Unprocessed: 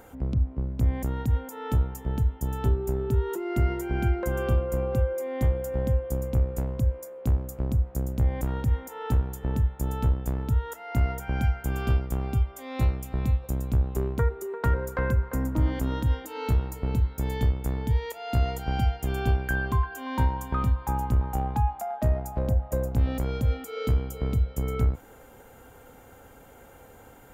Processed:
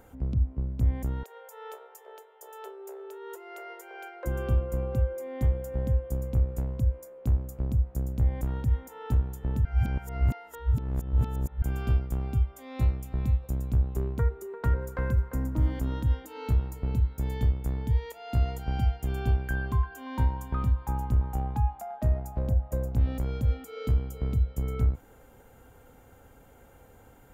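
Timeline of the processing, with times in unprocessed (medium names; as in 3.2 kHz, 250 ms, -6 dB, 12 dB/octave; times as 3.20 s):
1.23–4.25 s: Chebyshev high-pass 410 Hz, order 6
9.65–11.62 s: reverse
14.81–15.83 s: short-mantissa float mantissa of 6-bit
whole clip: bass shelf 190 Hz +6.5 dB; trim -6.5 dB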